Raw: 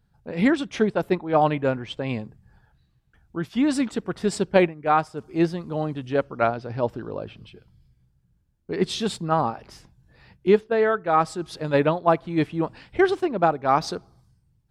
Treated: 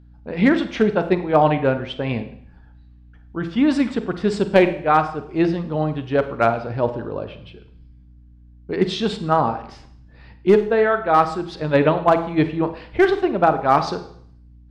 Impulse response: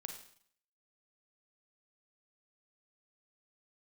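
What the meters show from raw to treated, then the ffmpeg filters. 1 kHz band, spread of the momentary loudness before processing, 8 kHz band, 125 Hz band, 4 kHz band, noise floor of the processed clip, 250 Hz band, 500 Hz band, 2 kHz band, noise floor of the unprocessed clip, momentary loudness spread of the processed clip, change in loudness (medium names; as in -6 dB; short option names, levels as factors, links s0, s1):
+4.0 dB, 13 LU, no reading, +4.0 dB, +2.5 dB, -47 dBFS, +4.0 dB, +4.0 dB, +4.0 dB, -66 dBFS, 12 LU, +4.0 dB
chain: -filter_complex "[0:a]lowpass=4200,bandreject=f=83.79:t=h:w=4,bandreject=f=167.58:t=h:w=4,bandreject=f=251.37:t=h:w=4,bandreject=f=335.16:t=h:w=4,bandreject=f=418.95:t=h:w=4,bandreject=f=502.74:t=h:w=4,bandreject=f=586.53:t=h:w=4,bandreject=f=670.32:t=h:w=4,bandreject=f=754.11:t=h:w=4,bandreject=f=837.9:t=h:w=4,bandreject=f=921.69:t=h:w=4,bandreject=f=1005.48:t=h:w=4,bandreject=f=1089.27:t=h:w=4,bandreject=f=1173.06:t=h:w=4,aeval=exprs='val(0)+0.00282*(sin(2*PI*60*n/s)+sin(2*PI*2*60*n/s)/2+sin(2*PI*3*60*n/s)/3+sin(2*PI*4*60*n/s)/4+sin(2*PI*5*60*n/s)/5)':c=same,aeval=exprs='clip(val(0),-1,0.266)':c=same,asplit=2[s0][s1];[1:a]atrim=start_sample=2205[s2];[s1][s2]afir=irnorm=-1:irlink=0,volume=1.58[s3];[s0][s3]amix=inputs=2:normalize=0,volume=0.841"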